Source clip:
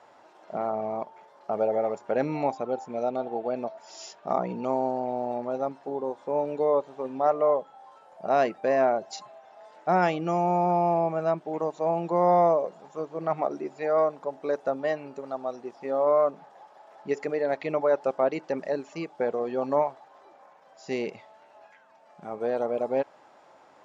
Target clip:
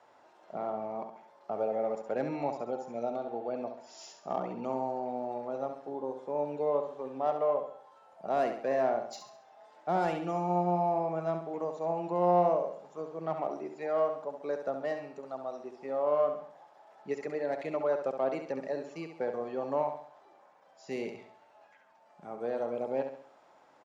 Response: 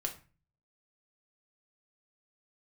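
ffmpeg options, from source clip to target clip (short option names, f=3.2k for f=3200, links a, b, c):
-filter_complex "[0:a]acrossover=split=190|1000[a][b][c];[c]asoftclip=type=tanh:threshold=-30dB[d];[a][b][d]amix=inputs=3:normalize=0,aecho=1:1:68|136|204|272|340:0.422|0.181|0.078|0.0335|0.0144,volume=-6.5dB"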